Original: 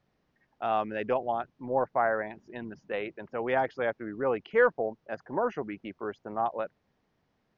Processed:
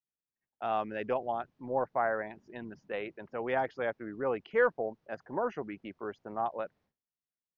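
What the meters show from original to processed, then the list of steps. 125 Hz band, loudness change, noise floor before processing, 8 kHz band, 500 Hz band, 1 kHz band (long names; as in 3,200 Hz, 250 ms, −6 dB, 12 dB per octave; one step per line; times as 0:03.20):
−3.5 dB, −3.5 dB, −75 dBFS, can't be measured, −3.5 dB, −3.5 dB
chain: downward expander −56 dBFS
level −3.5 dB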